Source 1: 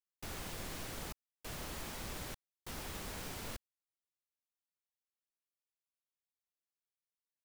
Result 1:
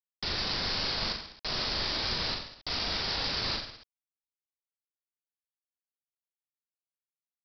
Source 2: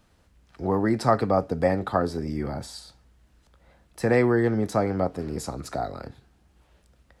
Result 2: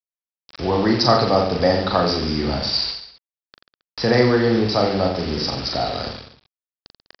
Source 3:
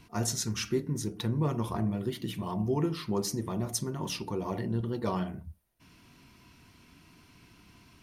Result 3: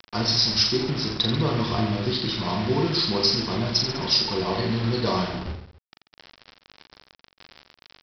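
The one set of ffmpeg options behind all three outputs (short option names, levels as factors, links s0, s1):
-filter_complex "[0:a]aexciter=amount=9.9:drive=5.7:freq=4100,asplit=2[s0][s1];[s1]acompressor=threshold=0.0158:ratio=5,volume=1.33[s2];[s0][s2]amix=inputs=2:normalize=0,bandreject=f=50:t=h:w=6,bandreject=f=100:t=h:w=6,bandreject=f=150:t=h:w=6,bandreject=f=200:t=h:w=6,bandreject=f=250:t=h:w=6,bandreject=f=300:t=h:w=6,bandreject=f=350:t=h:w=6,bandreject=f=400:t=h:w=6,aeval=exprs='val(0)+0.00178*(sin(2*PI*50*n/s)+sin(2*PI*2*50*n/s)/2+sin(2*PI*3*50*n/s)/3+sin(2*PI*4*50*n/s)/4+sin(2*PI*5*50*n/s)/5)':c=same,aresample=11025,acrusher=bits=5:mix=0:aa=0.000001,aresample=44100,aecho=1:1:40|86|138.9|199.7|269.7:0.631|0.398|0.251|0.158|0.1,volume=1.26"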